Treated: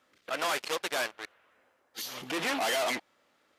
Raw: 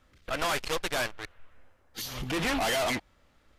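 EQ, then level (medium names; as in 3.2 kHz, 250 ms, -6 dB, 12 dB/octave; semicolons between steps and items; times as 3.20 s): high-pass 300 Hz 12 dB/octave; -1.0 dB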